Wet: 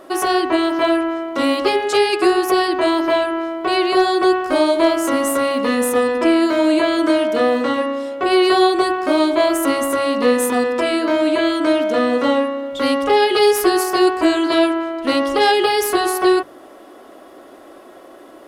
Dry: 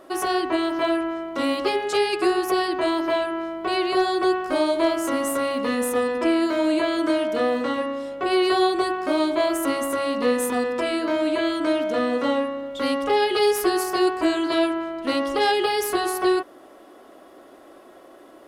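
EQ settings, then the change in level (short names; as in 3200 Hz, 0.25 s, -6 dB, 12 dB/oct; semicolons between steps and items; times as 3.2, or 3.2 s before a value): notches 50/100/150/200 Hz; +6.0 dB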